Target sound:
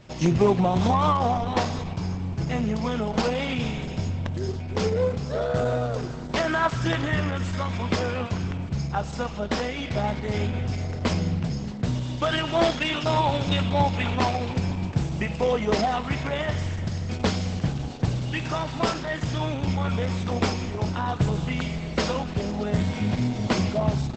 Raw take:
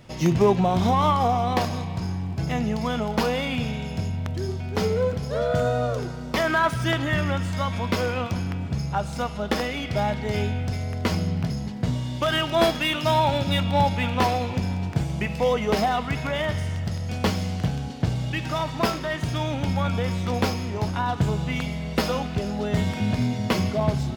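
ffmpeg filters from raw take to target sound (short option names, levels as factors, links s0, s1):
-ar 48000 -c:a libopus -b:a 10k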